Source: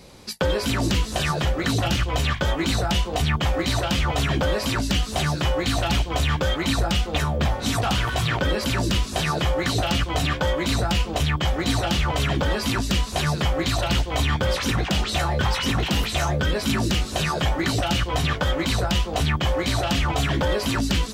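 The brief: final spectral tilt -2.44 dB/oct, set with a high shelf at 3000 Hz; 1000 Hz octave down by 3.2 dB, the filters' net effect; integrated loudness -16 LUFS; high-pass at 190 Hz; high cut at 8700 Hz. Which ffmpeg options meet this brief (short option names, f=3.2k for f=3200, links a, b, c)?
-af "highpass=190,lowpass=8.7k,equalizer=f=1k:t=o:g=-5.5,highshelf=f=3k:g=8.5,volume=7dB"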